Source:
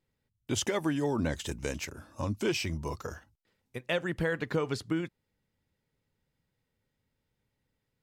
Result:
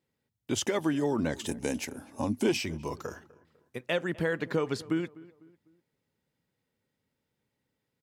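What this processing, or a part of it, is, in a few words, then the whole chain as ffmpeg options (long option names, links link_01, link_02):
filter by subtraction: -filter_complex "[0:a]asplit=2[link_01][link_02];[link_02]lowpass=250,volume=-1[link_03];[link_01][link_03]amix=inputs=2:normalize=0,asettb=1/sr,asplit=3[link_04][link_05][link_06];[link_04]atrim=end=1.464[link_07];[link_05]atrim=start=1.46:end=2.57,asetpts=PTS-STARTPTS,afade=type=in:duration=0.004:curve=qsin,afade=type=out:start_time=1.106:duration=0.004:curve=qsin,equalizer=frequency=250:width_type=o:width=0.33:gain=10,equalizer=frequency=800:width_type=o:width=0.33:gain=9,equalizer=frequency=1250:width_type=o:width=0.33:gain=-6,equalizer=frequency=10000:width_type=o:width=0.33:gain=12[link_08];[link_06]atrim=start=2.566[link_09];[link_07][link_08]acrossfade=duration=0.004:curve1=hsin:curve2=qsin[link_10];[link_10][link_09]acrossfade=duration=0.004:curve1=qsin:curve2=hsin,asplit=2[link_11][link_12];[link_12]adelay=250,lowpass=frequency=1800:poles=1,volume=-20dB,asplit=2[link_13][link_14];[link_14]adelay=250,lowpass=frequency=1800:poles=1,volume=0.41,asplit=2[link_15][link_16];[link_16]adelay=250,lowpass=frequency=1800:poles=1,volume=0.41[link_17];[link_11][link_13][link_15][link_17]amix=inputs=4:normalize=0"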